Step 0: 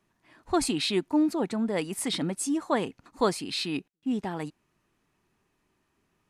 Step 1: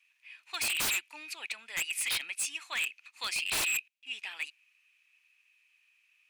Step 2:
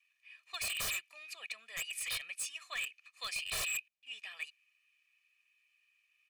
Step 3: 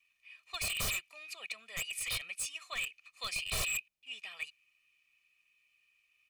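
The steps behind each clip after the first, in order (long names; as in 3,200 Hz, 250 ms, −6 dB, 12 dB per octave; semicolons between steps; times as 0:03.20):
high-pass with resonance 2,500 Hz, resonance Q 9.3; wave folding −25 dBFS
low-shelf EQ 110 Hz +6 dB; comb filter 1.7 ms, depth 90%; level −8.5 dB
low-shelf EQ 330 Hz +10 dB; notch filter 1,700 Hz, Q 7.7; level +1.5 dB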